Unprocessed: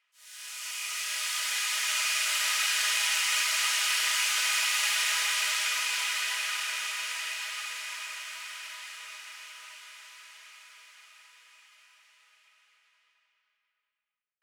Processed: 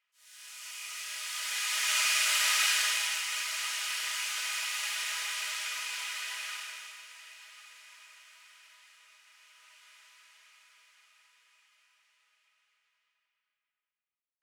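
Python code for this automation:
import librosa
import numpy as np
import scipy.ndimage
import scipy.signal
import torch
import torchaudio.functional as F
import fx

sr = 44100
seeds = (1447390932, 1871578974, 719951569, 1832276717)

y = fx.gain(x, sr, db=fx.line((1.25, -6.5), (1.97, 1.0), (2.69, 1.0), (3.26, -7.0), (6.53, -7.0), (7.07, -16.0), (9.24, -16.0), (9.92, -9.0)))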